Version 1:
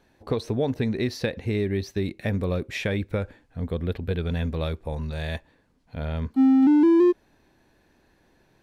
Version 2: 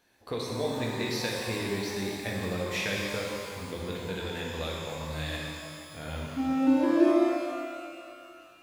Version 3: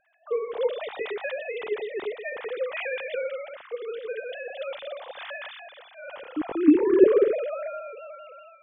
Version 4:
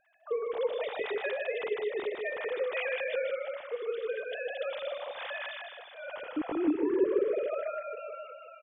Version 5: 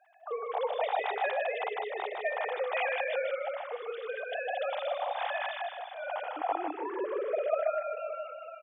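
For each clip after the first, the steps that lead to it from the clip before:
spectral tilt +2.5 dB per octave; reverb with rising layers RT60 2.3 s, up +12 semitones, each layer −8 dB, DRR −3 dB; level −6.5 dB
three sine waves on the formant tracks; low-shelf EQ 300 Hz +9.5 dB
downward compressor 2.5 to 1, threshold −28 dBFS, peak gain reduction 12.5 dB; repeating echo 153 ms, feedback 18%, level −5.5 dB; level −1.5 dB
high-pass with resonance 760 Hz, resonance Q 5.8

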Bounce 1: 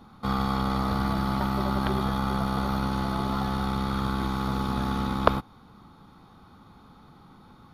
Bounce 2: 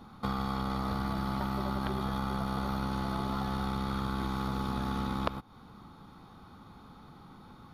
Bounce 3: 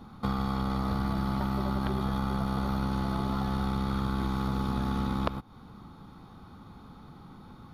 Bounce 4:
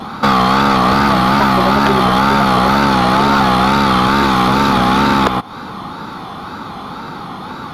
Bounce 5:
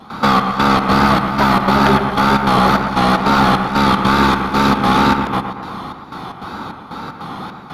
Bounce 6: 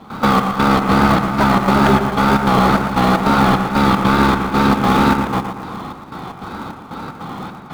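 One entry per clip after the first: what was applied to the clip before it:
downward compressor 6 to 1, threshold −29 dBFS, peak gain reduction 15.5 dB
low-shelf EQ 360 Hz +5 dB
tape wow and flutter 96 cents; mid-hump overdrive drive 26 dB, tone 4,600 Hz, clips at −10 dBFS; level +9 dB
gate pattern ".xxx..xx" 152 BPM −12 dB; on a send: bucket-brigade delay 116 ms, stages 2,048, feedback 55%, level −7.5 dB; on the sum: level −1 dB
high-frequency loss of the air 120 metres; in parallel at −11 dB: sample-rate reduction 1,600 Hz, jitter 20%; on the sum: level −1 dB

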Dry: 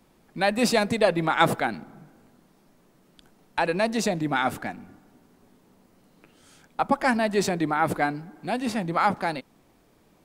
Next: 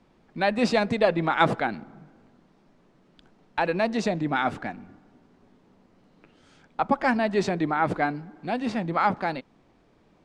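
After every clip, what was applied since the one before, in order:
high-frequency loss of the air 120 metres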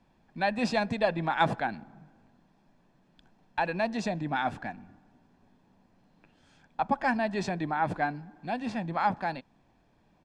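comb filter 1.2 ms, depth 43%
level −5.5 dB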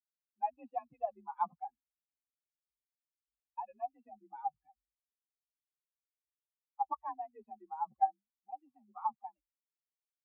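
spectral dynamics exaggerated over time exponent 3
formant resonators in series a
frequency shifter +43 Hz
level +5.5 dB

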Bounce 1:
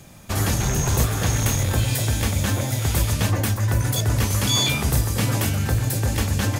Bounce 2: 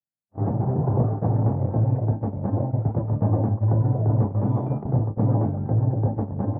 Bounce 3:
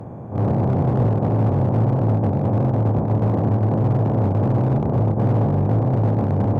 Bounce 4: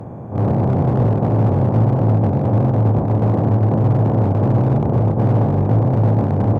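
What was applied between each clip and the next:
elliptic band-pass filter 110–820 Hz, stop band 60 dB; noise gate −25 dBFS, range −57 dB; automatic gain control gain up to 3 dB
compressor on every frequency bin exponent 0.2; flanger 1.4 Hz, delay 10 ms, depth 7.6 ms, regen −41%; asymmetric clip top −17 dBFS, bottom −14 dBFS; level +2.5 dB
single-tap delay 750 ms −12.5 dB; level +2.5 dB

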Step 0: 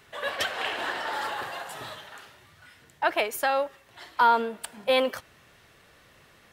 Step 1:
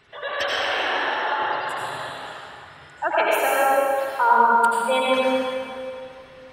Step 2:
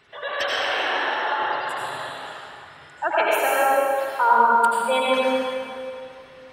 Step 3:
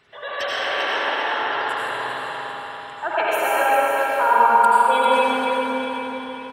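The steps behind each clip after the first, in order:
gate on every frequency bin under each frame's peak −20 dB strong; convolution reverb RT60 2.6 s, pre-delay 73 ms, DRR −6.5 dB
low-shelf EQ 140 Hz −6 dB
repeating echo 397 ms, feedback 41%, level −6.5 dB; spring reverb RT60 3.8 s, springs 49/54 ms, chirp 25 ms, DRR 1 dB; level −2 dB

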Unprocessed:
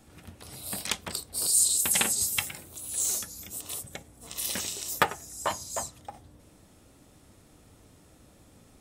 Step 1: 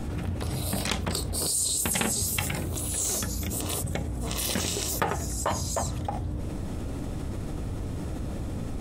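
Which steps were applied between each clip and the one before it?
spectral tilt −2.5 dB per octave
envelope flattener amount 70%
level −4.5 dB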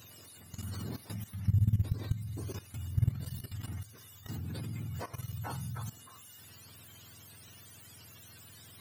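frequency axis turned over on the octave scale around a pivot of 930 Hz
steady tone 12,000 Hz −48 dBFS
output level in coarse steps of 15 dB
level −8.5 dB

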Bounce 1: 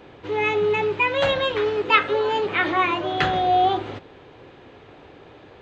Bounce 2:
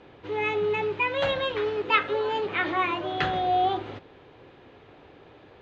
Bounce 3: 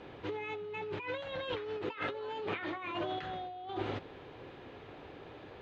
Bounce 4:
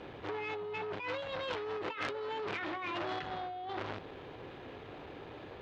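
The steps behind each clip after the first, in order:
low-pass filter 6,000 Hz 12 dB per octave; level −5 dB
compressor whose output falls as the input rises −34 dBFS, ratio −1; level −5.5 dB
saturating transformer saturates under 2,300 Hz; level +3.5 dB

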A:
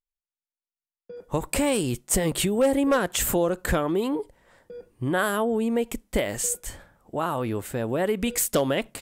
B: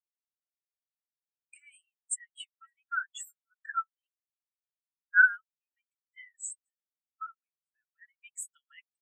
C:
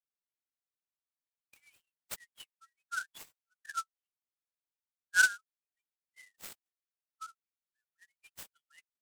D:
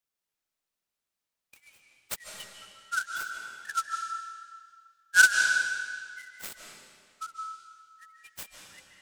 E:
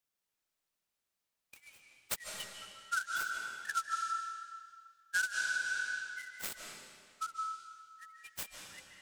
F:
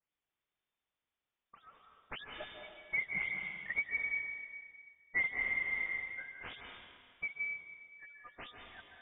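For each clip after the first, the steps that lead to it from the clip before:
Chebyshev high-pass filter 1,300 Hz, order 10; every bin expanded away from the loudest bin 4 to 1
parametric band 1,500 Hz +3 dB 0.63 octaves; short delay modulated by noise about 5,800 Hz, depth 0.032 ms; level −7.5 dB
convolution reverb RT60 1.9 s, pre-delay 110 ms, DRR 1.5 dB; level +6.5 dB
downward compressor 16 to 1, threshold −30 dBFS, peak gain reduction 18 dB
all-pass dispersion lows, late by 83 ms, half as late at 600 Hz; voice inversion scrambler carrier 3,600 Hz

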